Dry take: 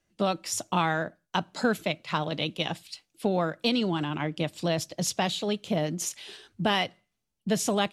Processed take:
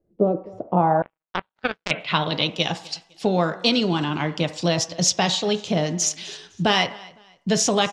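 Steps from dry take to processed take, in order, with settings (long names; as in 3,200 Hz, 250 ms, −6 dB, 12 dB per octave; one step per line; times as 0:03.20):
repeating echo 254 ms, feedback 30%, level −22.5 dB
on a send at −8 dB: convolution reverb RT60 0.60 s, pre-delay 3 ms
on the sum: low-pass filter sweep 460 Hz → 6,000 Hz, 0:00.55–0:02.56
0:01.02–0:01.91: power curve on the samples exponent 3
level +5 dB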